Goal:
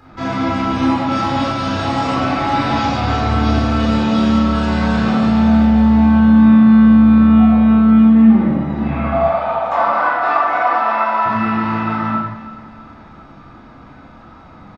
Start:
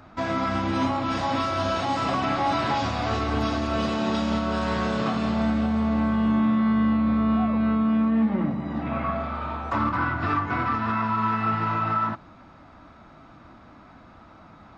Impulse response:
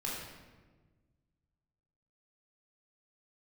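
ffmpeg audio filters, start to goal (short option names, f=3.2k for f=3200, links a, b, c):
-filter_complex "[0:a]asettb=1/sr,asplit=3[a][b][c];[a]atrim=end=9.124[d];[b]atrim=start=9.12:end=11.26,asetpts=PTS-STARTPTS,afade=t=in:d=0.004:c=qsin,afade=t=out:st=2.136:d=0.004:c=qsin,highpass=f=660:t=q:w=4.9[e];[c]atrim=start=11.256[f];[d][e]acrossfade=d=0.004:c1=hsin:c2=qsin[g];[g][f]acrossfade=d=0.004:c1=qsin:c2=hsin,aecho=1:1:323|646|969|1292:0.158|0.0761|0.0365|0.0175[h];[1:a]atrim=start_sample=2205,afade=t=out:st=0.3:d=0.01,atrim=end_sample=13671[i];[h][i]afir=irnorm=-1:irlink=0,volume=4.5dB"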